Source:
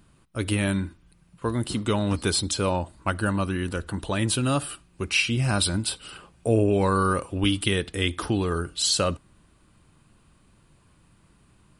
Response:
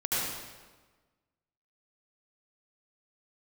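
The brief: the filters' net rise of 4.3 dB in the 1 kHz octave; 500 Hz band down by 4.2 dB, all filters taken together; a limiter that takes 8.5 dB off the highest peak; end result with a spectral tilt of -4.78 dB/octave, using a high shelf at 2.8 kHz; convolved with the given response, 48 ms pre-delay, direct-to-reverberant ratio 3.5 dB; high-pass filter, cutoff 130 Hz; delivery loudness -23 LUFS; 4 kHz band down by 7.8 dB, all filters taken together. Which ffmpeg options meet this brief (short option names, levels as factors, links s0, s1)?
-filter_complex "[0:a]highpass=130,equalizer=f=500:t=o:g=-7,equalizer=f=1000:t=o:g=8,highshelf=f=2800:g=-5.5,equalizer=f=4000:t=o:g=-6,alimiter=limit=0.158:level=0:latency=1,asplit=2[s0][s1];[1:a]atrim=start_sample=2205,adelay=48[s2];[s1][s2]afir=irnorm=-1:irlink=0,volume=0.224[s3];[s0][s3]amix=inputs=2:normalize=0,volume=1.78"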